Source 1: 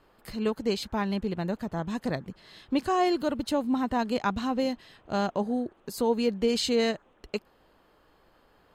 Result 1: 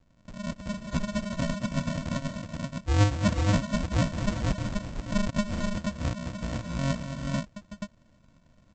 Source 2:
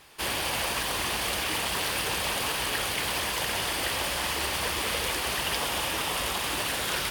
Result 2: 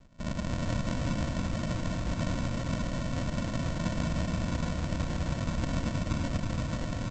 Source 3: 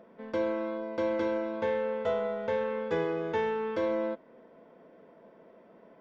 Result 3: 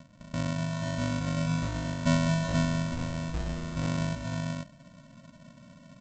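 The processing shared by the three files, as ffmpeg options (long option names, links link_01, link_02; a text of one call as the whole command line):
ffmpeg -i in.wav -af "firequalizer=gain_entry='entry(180,0);entry(360,-29);entry(630,9);entry(1300,-10);entry(2100,-5);entry(3400,-17)':delay=0.05:min_phase=1,aresample=16000,acrusher=samples=39:mix=1:aa=0.000001,aresample=44100,aecho=1:1:223|375|389|481:0.335|0.266|0.126|0.668" out.wav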